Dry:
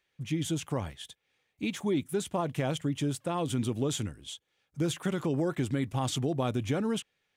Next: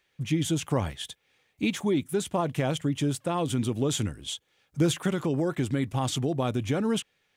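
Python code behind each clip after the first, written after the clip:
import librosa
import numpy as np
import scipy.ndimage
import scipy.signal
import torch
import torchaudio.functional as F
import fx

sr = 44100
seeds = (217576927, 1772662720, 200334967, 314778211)

y = fx.rider(x, sr, range_db=4, speed_s=0.5)
y = F.gain(torch.from_numpy(y), 3.5).numpy()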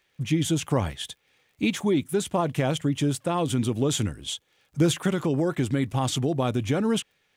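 y = fx.dmg_crackle(x, sr, seeds[0], per_s=35.0, level_db=-54.0)
y = F.gain(torch.from_numpy(y), 2.5).numpy()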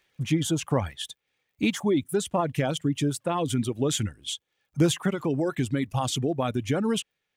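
y = fx.dereverb_blind(x, sr, rt60_s=1.4)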